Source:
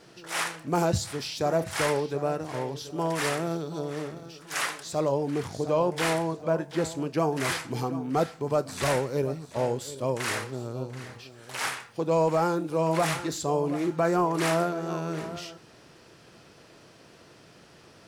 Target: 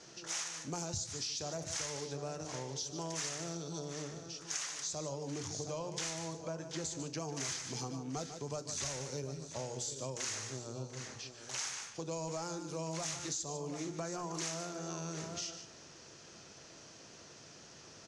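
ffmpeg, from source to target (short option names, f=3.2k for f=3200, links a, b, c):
-filter_complex "[0:a]lowpass=f=6.4k:t=q:w=5.2,bandreject=f=60:t=h:w=6,bandreject=f=120:t=h:w=6,bandreject=f=180:t=h:w=6,bandreject=f=240:t=h:w=6,bandreject=f=300:t=h:w=6,bandreject=f=360:t=h:w=6,bandreject=f=420:t=h:w=6,bandreject=f=480:t=h:w=6,acrossover=split=140|3000[a][b][c];[b]acompressor=threshold=-47dB:ratio=1.5[d];[a][d][c]amix=inputs=3:normalize=0,aecho=1:1:148:0.251,acompressor=threshold=-32dB:ratio=6,volume=-4dB"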